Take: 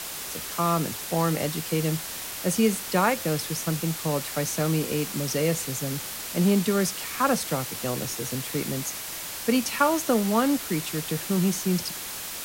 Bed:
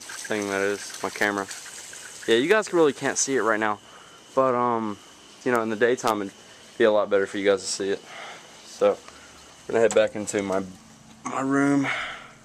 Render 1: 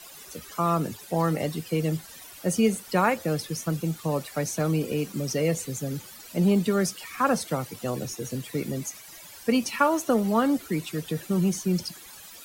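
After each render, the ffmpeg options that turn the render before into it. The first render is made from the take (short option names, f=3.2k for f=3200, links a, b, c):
-af "afftdn=nr=15:nf=-35"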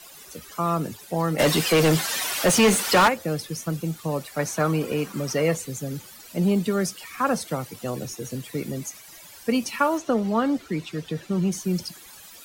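-filter_complex "[0:a]asplit=3[a][b][c];[a]afade=t=out:st=1.38:d=0.02[d];[b]asplit=2[e][f];[f]highpass=f=720:p=1,volume=29dB,asoftclip=type=tanh:threshold=-9.5dB[g];[e][g]amix=inputs=2:normalize=0,lowpass=f=5.2k:p=1,volume=-6dB,afade=t=in:st=1.38:d=0.02,afade=t=out:st=3.07:d=0.02[h];[c]afade=t=in:st=3.07:d=0.02[i];[d][h][i]amix=inputs=3:normalize=0,asettb=1/sr,asplit=3[j][k][l];[j]atrim=end=4.394[m];[k]atrim=start=4.39:end=5.57,asetpts=PTS-STARTPTS,afade=t=in:d=0.004:c=qsin,afade=t=out:st=1.176:d=0.004:c=qsin,equalizer=f=1.2k:t=o:w=1.7:g=10.5[n];[l]atrim=start=5.566[o];[m][n]acrossfade=d=0.004:c1=hsin:c2=qsin[p];[p][o]acrossfade=d=0.004:c1=qsin:c2=hsin,asettb=1/sr,asplit=3[q][r][s];[q]atrim=end=9.984[t];[r]atrim=start=9.98:end=11.52,asetpts=PTS-STARTPTS,afade=t=in:d=0.004:c=qsin,afade=t=out:st=1.536:d=0.004:c=qsin,acrossover=split=6600[u][v];[v]acompressor=threshold=-59dB:ratio=4:attack=1:release=60[w];[u][w]amix=inputs=2:normalize=0[x];[s]atrim=start=11.516[y];[t][x]acrossfade=d=0.004:c1=hsin:c2=qsin[z];[z][y]acrossfade=d=0.004:c1=qsin:c2=hsin"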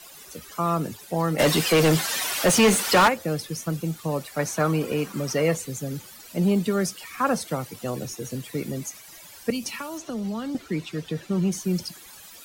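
-filter_complex "[0:a]asettb=1/sr,asplit=3[a][b][c];[a]atrim=end=9.504[d];[b]atrim=start=9.5:end=10.55,asetpts=PTS-STARTPTS,afade=t=in:d=0.004:c=qsin,afade=t=out:st=1.046:d=0.004:c=qsin,acrossover=split=190|3000[e][f][g];[f]acompressor=threshold=-33dB:ratio=6:attack=3.2:release=140:knee=2.83:detection=peak[h];[e][h][g]amix=inputs=3:normalize=0[i];[c]atrim=start=10.546[j];[d][i]acrossfade=d=0.004:c1=hsin:c2=qsin[k];[k][j]acrossfade=d=0.004:c1=qsin:c2=hsin"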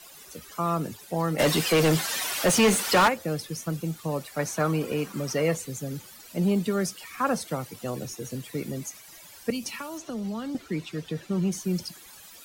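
-af "volume=-2.5dB"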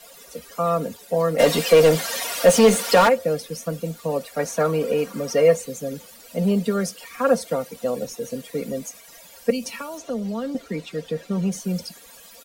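-af "equalizer=f=550:t=o:w=0.38:g=14,aecho=1:1:4.3:0.65"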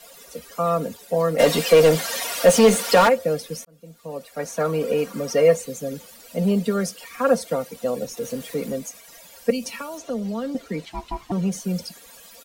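-filter_complex "[0:a]asettb=1/sr,asplit=3[a][b][c];[a]atrim=end=8.174[d];[b]atrim=start=8.17:end=8.76,asetpts=PTS-STARTPTS,afade=t=in:d=0.004:c=qsin,afade=t=out:st=0.586:d=0.004:c=qsin,aeval=exprs='val(0)+0.5*0.0106*sgn(val(0))':c=same[e];[c]atrim=start=8.756[f];[d][e]acrossfade=d=0.004:c1=hsin:c2=qsin[g];[g][f]acrossfade=d=0.004:c1=qsin:c2=hsin,asettb=1/sr,asplit=3[h][i][j];[h]atrim=end=10.854[k];[i]atrim=start=10.85:end=11.32,asetpts=PTS-STARTPTS,afade=t=in:d=0.004:c=qsin,afade=t=out:st=0.466:d=0.004:c=qsin,aeval=exprs='val(0)*sin(2*PI*510*n/s)':c=same[l];[j]atrim=start=11.316[m];[k][l]acrossfade=d=0.004:c1=hsin:c2=qsin[n];[n][m]acrossfade=d=0.004:c1=qsin:c2=hsin,asplit=2[o][p];[o]atrim=end=3.65,asetpts=PTS-STARTPTS,afade=t=out:st=3.646:d=0.004:c=hsin[q];[p]atrim=start=3.65,asetpts=PTS-STARTPTS,afade=t=in:d=1.27[r];[q][r]concat=n=2:v=0:a=1"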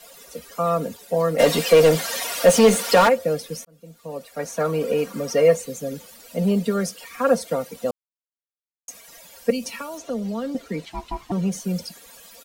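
-filter_complex "[0:a]asplit=3[a][b][c];[a]atrim=end=7.91,asetpts=PTS-STARTPTS,afade=t=out:st=7.906:d=0.004:c=hsin[d];[b]atrim=start=7.91:end=8.88,asetpts=PTS-STARTPTS,volume=0[e];[c]atrim=start=8.88,asetpts=PTS-STARTPTS,afade=t=in:d=0.004:c=hsin[f];[d][e][f]concat=n=3:v=0:a=1"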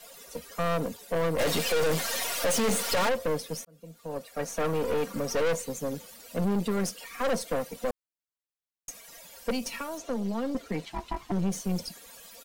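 -af "aeval=exprs='(tanh(15.8*val(0)+0.6)-tanh(0.6))/15.8':c=same"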